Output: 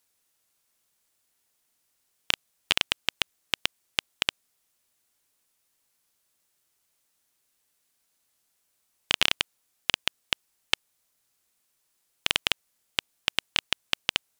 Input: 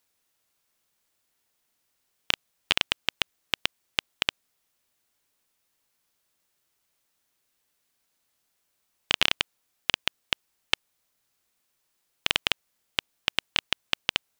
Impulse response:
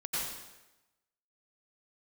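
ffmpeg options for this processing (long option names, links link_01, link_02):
-af "equalizer=frequency=9700:width=0.63:gain=5,volume=-1dB"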